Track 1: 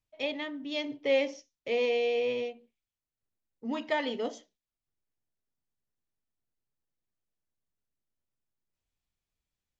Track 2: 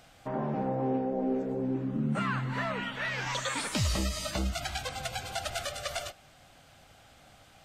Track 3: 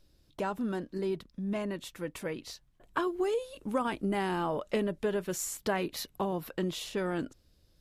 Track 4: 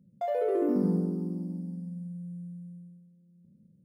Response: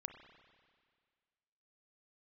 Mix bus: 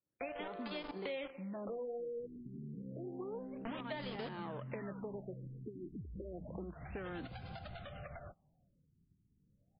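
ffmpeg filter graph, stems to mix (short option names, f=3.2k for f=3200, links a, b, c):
-filter_complex "[0:a]aeval=exprs='val(0)*gte(abs(val(0)),0.0224)':c=same,volume=1.5dB,asplit=2[a][b];[b]volume=-14dB[c];[1:a]bass=f=250:g=7,treble=f=4k:g=1,acompressor=threshold=-37dB:ratio=16,aemphasis=mode=reproduction:type=75kf,adelay=2200,volume=-5dB[d];[2:a]aeval=exprs='if(lt(val(0),0),0.447*val(0),val(0))':c=same,highpass=f=110:w=0.5412,highpass=f=110:w=1.3066,volume=-2dB[e];[3:a]highpass=f=770:w=0.5412,highpass=f=770:w=1.3066,volume=-1dB[f];[a][e]amix=inputs=2:normalize=0,acompressor=threshold=-37dB:ratio=6,volume=0dB[g];[d][f]amix=inputs=2:normalize=0,equalizer=f=180:w=2:g=9.5,acompressor=threshold=-43dB:ratio=2.5,volume=0dB[h];[4:a]atrim=start_sample=2205[i];[c][i]afir=irnorm=-1:irlink=0[j];[g][h][j]amix=inputs=3:normalize=0,agate=range=-16dB:threshold=-51dB:ratio=16:detection=peak,acrossover=split=730|2600[k][l][m];[k]acompressor=threshold=-42dB:ratio=4[n];[l]acompressor=threshold=-48dB:ratio=4[o];[m]acompressor=threshold=-50dB:ratio=4[p];[n][o][p]amix=inputs=3:normalize=0,afftfilt=real='re*lt(b*sr/1024,420*pow(5200/420,0.5+0.5*sin(2*PI*0.3*pts/sr)))':imag='im*lt(b*sr/1024,420*pow(5200/420,0.5+0.5*sin(2*PI*0.3*pts/sr)))':win_size=1024:overlap=0.75"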